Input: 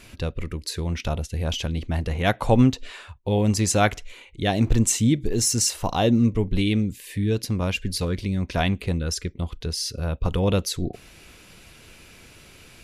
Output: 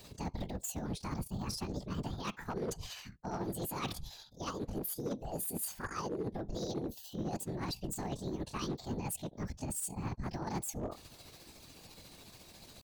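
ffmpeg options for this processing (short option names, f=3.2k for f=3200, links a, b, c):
-af "areverse,acompressor=threshold=-28dB:ratio=12,areverse,asetrate=74167,aresample=44100,atempo=0.594604,afftfilt=real='hypot(re,im)*cos(2*PI*random(0))':imag='hypot(re,im)*sin(2*PI*random(1))':win_size=512:overlap=0.75,volume=32dB,asoftclip=hard,volume=-32dB,tremolo=f=14:d=0.4,volume=2dB"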